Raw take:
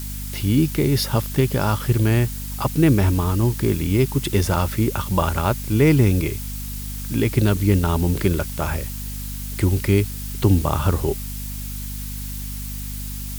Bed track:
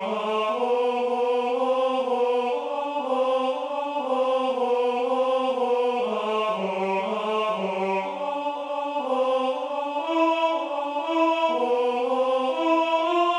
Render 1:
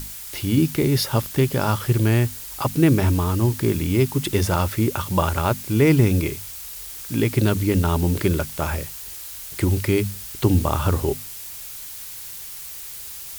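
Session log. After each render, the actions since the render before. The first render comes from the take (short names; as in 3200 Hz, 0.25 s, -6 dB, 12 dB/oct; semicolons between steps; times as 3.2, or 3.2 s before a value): notches 50/100/150/200/250 Hz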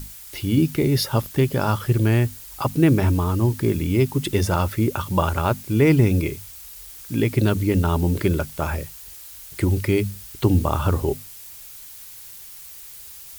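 denoiser 6 dB, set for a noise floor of -36 dBFS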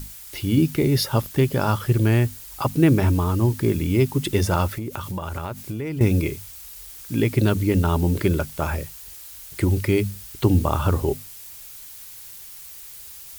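4.67–6.01 compressor 12:1, threshold -25 dBFS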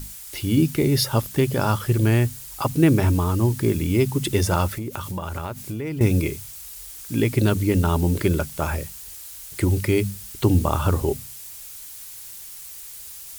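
de-hum 64.82 Hz, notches 3; dynamic EQ 8800 Hz, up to +4 dB, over -47 dBFS, Q 0.8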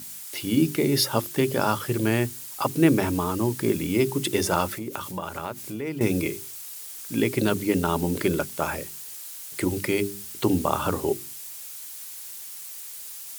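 HPF 190 Hz 12 dB/oct; notches 50/100/150/200/250/300/350/400 Hz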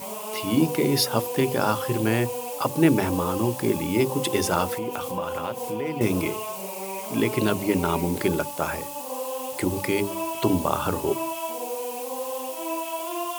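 add bed track -9 dB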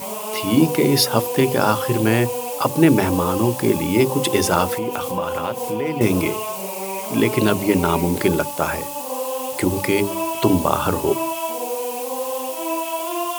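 gain +5.5 dB; limiter -1 dBFS, peak gain reduction 2 dB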